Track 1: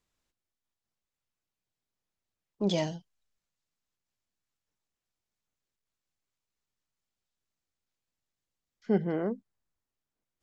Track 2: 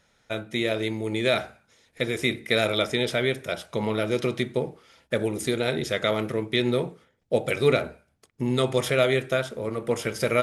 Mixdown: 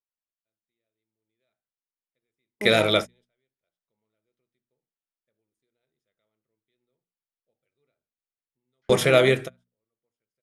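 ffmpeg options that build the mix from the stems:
-filter_complex "[0:a]bass=f=250:g=-8,treble=f=4000:g=-14,volume=0.501,asplit=2[s0][s1];[1:a]adelay=150,volume=0.668[s2];[s1]apad=whole_len=466287[s3];[s2][s3]sidechaingate=range=0.00447:threshold=0.00158:ratio=16:detection=peak[s4];[s0][s4]amix=inputs=2:normalize=0,agate=range=0.224:threshold=0.00126:ratio=16:detection=peak,bandreject=f=60:t=h:w=6,bandreject=f=120:t=h:w=6,bandreject=f=180:t=h:w=6,bandreject=f=240:t=h:w=6,dynaudnorm=f=450:g=5:m=2.51"

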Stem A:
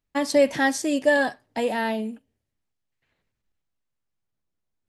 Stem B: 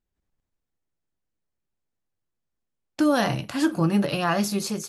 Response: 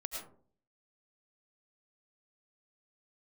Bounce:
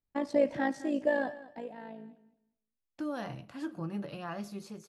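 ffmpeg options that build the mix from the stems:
-filter_complex "[0:a]lowpass=f=1000:p=1,tremolo=f=55:d=0.571,volume=0.562,afade=t=out:st=1.14:d=0.57:silence=0.266073,asplit=3[s0][s1][s2];[s1]volume=0.112[s3];[s2]volume=0.15[s4];[1:a]highshelf=f=3500:g=-10,volume=0.158,asplit=2[s5][s6];[s6]volume=0.119[s7];[2:a]atrim=start_sample=2205[s8];[s3][s7]amix=inputs=2:normalize=0[s9];[s9][s8]afir=irnorm=-1:irlink=0[s10];[s4]aecho=0:1:208|416|624:1|0.18|0.0324[s11];[s0][s5][s10][s11]amix=inputs=4:normalize=0"

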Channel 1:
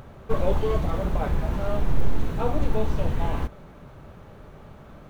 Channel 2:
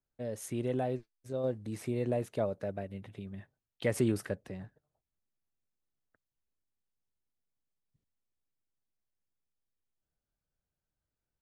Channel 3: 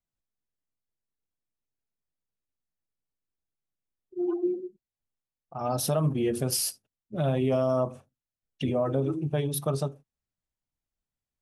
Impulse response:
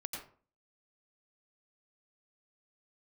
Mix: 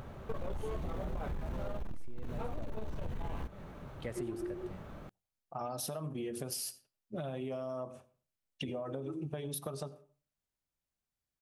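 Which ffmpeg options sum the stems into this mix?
-filter_complex "[0:a]asoftclip=type=tanh:threshold=0.112,volume=0.75[s0];[1:a]adelay=200,volume=0.299,asplit=2[s1][s2];[s2]volume=0.398[s3];[2:a]lowshelf=f=220:g=-7,acompressor=threshold=0.0224:ratio=4,volume=0.841,asplit=2[s4][s5];[s5]volume=0.15[s6];[3:a]atrim=start_sample=2205[s7];[s3][s6]amix=inputs=2:normalize=0[s8];[s8][s7]afir=irnorm=-1:irlink=0[s9];[s0][s1][s4][s9]amix=inputs=4:normalize=0,acompressor=threshold=0.0178:ratio=6"

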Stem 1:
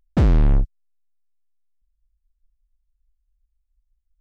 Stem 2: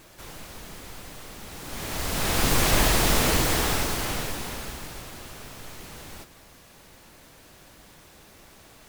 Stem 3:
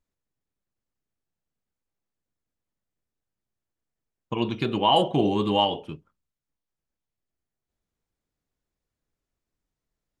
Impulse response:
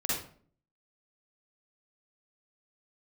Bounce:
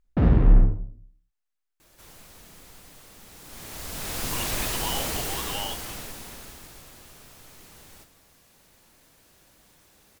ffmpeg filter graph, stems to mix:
-filter_complex "[0:a]lowpass=2600,volume=0.473,asplit=2[s0][s1];[s1]volume=0.631[s2];[1:a]highshelf=f=5200:g=6.5,adelay=1800,volume=0.282,asplit=2[s3][s4];[s4]volume=0.15[s5];[2:a]highpass=1100,volume=0.944[s6];[s0][s6]amix=inputs=2:normalize=0,alimiter=limit=0.0631:level=0:latency=1,volume=1[s7];[3:a]atrim=start_sample=2205[s8];[s2][s5]amix=inputs=2:normalize=0[s9];[s9][s8]afir=irnorm=-1:irlink=0[s10];[s3][s7][s10]amix=inputs=3:normalize=0"

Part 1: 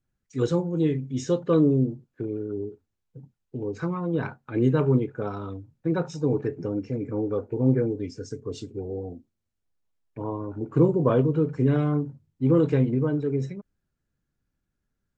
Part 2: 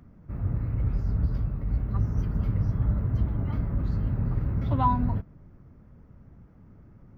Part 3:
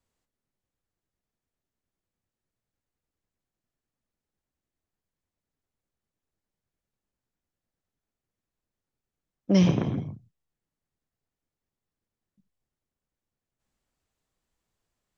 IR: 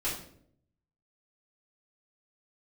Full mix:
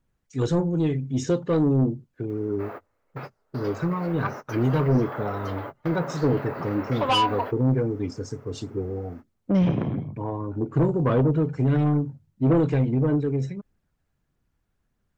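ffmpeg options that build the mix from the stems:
-filter_complex "[0:a]aphaser=in_gain=1:out_gain=1:delay=1.5:decay=0.35:speed=1.6:type=triangular,volume=1.26,asplit=2[s0][s1];[1:a]highpass=f=470:w=0.5412,highpass=f=470:w=1.3066,aeval=exprs='0.168*sin(PI/2*2.82*val(0)/0.168)':c=same,adelay=2300,volume=1.12[s2];[2:a]lowpass=2300,volume=1.26[s3];[s1]apad=whole_len=418028[s4];[s2][s4]sidechaingate=range=0.0126:threshold=0.01:ratio=16:detection=peak[s5];[s0][s5][s3]amix=inputs=3:normalize=0,asoftclip=type=tanh:threshold=0.188"

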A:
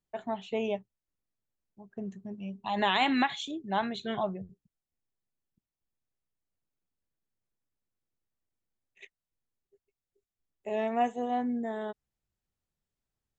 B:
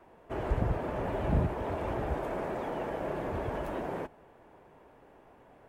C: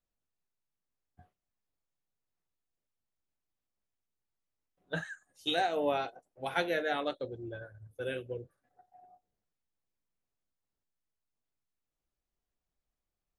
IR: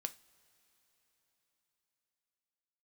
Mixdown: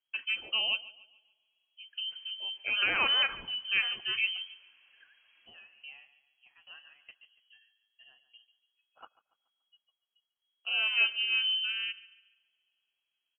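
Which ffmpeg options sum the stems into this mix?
-filter_complex "[0:a]alimiter=limit=0.15:level=0:latency=1:release=73,volume=0.944,asplit=3[s0][s1][s2];[s1]volume=0.2[s3];[s2]volume=0.133[s4];[1:a]equalizer=f=170:w=0.35:g=-13.5,acompressor=threshold=0.00708:ratio=4,adelay=1800,volume=0.112[s5];[2:a]aeval=exprs='val(0)*pow(10,-20*if(lt(mod(2.4*n/s,1),2*abs(2.4)/1000),1-mod(2.4*n/s,1)/(2*abs(2.4)/1000),(mod(2.4*n/s,1)-2*abs(2.4)/1000)/(1-2*abs(2.4)/1000))/20)':c=same,volume=0.168,asplit=3[s6][s7][s8];[s7]volume=0.2[s9];[s8]apad=whole_len=330176[s10];[s5][s10]sidechaincompress=threshold=0.00141:ratio=8:attack=6.5:release=830[s11];[3:a]atrim=start_sample=2205[s12];[s3][s12]afir=irnorm=-1:irlink=0[s13];[s4][s9]amix=inputs=2:normalize=0,aecho=0:1:143|286|429|572|715|858:1|0.4|0.16|0.064|0.0256|0.0102[s14];[s0][s11][s6][s13][s14]amix=inputs=5:normalize=0,lowpass=f=2800:t=q:w=0.5098,lowpass=f=2800:t=q:w=0.6013,lowpass=f=2800:t=q:w=0.9,lowpass=f=2800:t=q:w=2.563,afreqshift=-3300"

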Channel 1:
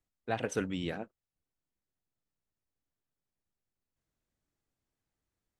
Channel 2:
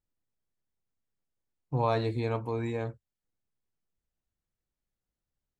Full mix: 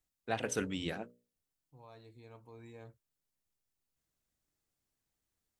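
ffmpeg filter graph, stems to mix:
-filter_complex "[0:a]bandreject=f=60:t=h:w=6,bandreject=f=120:t=h:w=6,bandreject=f=180:t=h:w=6,bandreject=f=240:t=h:w=6,bandreject=f=300:t=h:w=6,bandreject=f=360:t=h:w=6,bandreject=f=420:t=h:w=6,bandreject=f=480:t=h:w=6,bandreject=f=540:t=h:w=6,bandreject=f=600:t=h:w=6,volume=0.794,asplit=2[s0][s1];[1:a]volume=0.224[s2];[s1]apad=whole_len=246777[s3];[s2][s3]sidechaincompress=threshold=0.00141:ratio=16:attack=29:release=1490[s4];[s0][s4]amix=inputs=2:normalize=0,highshelf=f=3800:g=8"

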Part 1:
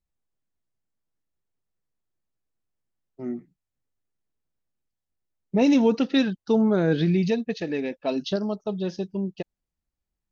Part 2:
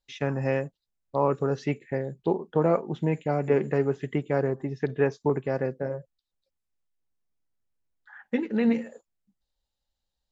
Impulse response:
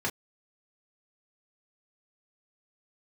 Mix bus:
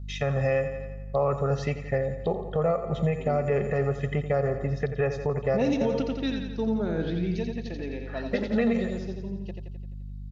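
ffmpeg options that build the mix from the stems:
-filter_complex "[0:a]volume=0.891,asplit=2[s0][s1];[s1]volume=0.398[s2];[1:a]aeval=exprs='val(0)+0.00708*(sin(2*PI*50*n/s)+sin(2*PI*2*50*n/s)/2+sin(2*PI*3*50*n/s)/3+sin(2*PI*4*50*n/s)/4+sin(2*PI*5*50*n/s)/5)':c=same,aecho=1:1:1.6:0.87,volume=1.41,asplit=3[s3][s4][s5];[s4]volume=0.237[s6];[s5]apad=whole_len=454907[s7];[s0][s7]sidechaingate=range=0.0224:threshold=0.0398:ratio=16:detection=peak[s8];[s2][s6]amix=inputs=2:normalize=0,aecho=0:1:86|172|258|344|430|516|602|688:1|0.56|0.314|0.176|0.0983|0.0551|0.0308|0.0173[s9];[s8][s3][s9]amix=inputs=3:normalize=0,alimiter=limit=0.168:level=0:latency=1:release=235"

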